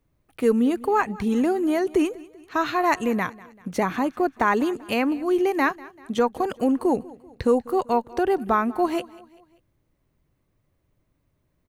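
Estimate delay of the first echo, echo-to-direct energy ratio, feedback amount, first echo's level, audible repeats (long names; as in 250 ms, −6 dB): 194 ms, −20.0 dB, 47%, −21.0 dB, 3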